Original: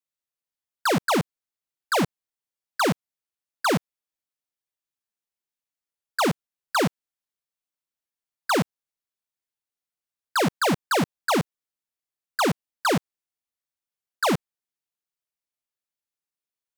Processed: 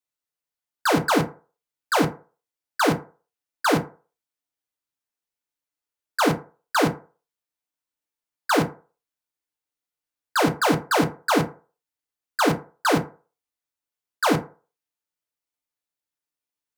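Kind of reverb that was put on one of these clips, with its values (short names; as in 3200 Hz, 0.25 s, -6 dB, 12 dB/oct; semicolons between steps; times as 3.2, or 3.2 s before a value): FDN reverb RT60 0.37 s, low-frequency decay 0.75×, high-frequency decay 0.45×, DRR 3 dB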